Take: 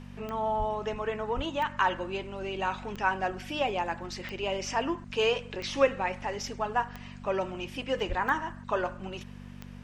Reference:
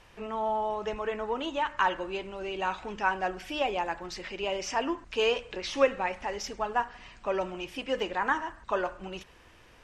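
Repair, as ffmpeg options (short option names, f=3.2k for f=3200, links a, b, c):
-filter_complex "[0:a]adeclick=t=4,bandreject=f=48.2:t=h:w=4,bandreject=f=96.4:t=h:w=4,bandreject=f=144.6:t=h:w=4,bandreject=f=192.8:t=h:w=4,bandreject=f=241:t=h:w=4,asplit=3[a][b][c];[a]afade=t=out:st=0.58:d=0.02[d];[b]highpass=f=140:w=0.5412,highpass=f=140:w=1.3066,afade=t=in:st=0.58:d=0.02,afade=t=out:st=0.7:d=0.02[e];[c]afade=t=in:st=0.7:d=0.02[f];[d][e][f]amix=inputs=3:normalize=0,asplit=3[g][h][i];[g]afade=t=out:st=1.35:d=0.02[j];[h]highpass=f=140:w=0.5412,highpass=f=140:w=1.3066,afade=t=in:st=1.35:d=0.02,afade=t=out:st=1.47:d=0.02[k];[i]afade=t=in:st=1.47:d=0.02[l];[j][k][l]amix=inputs=3:normalize=0,asplit=3[m][n][o];[m]afade=t=out:st=8.08:d=0.02[p];[n]highpass=f=140:w=0.5412,highpass=f=140:w=1.3066,afade=t=in:st=8.08:d=0.02,afade=t=out:st=8.2:d=0.02[q];[o]afade=t=in:st=8.2:d=0.02[r];[p][q][r]amix=inputs=3:normalize=0"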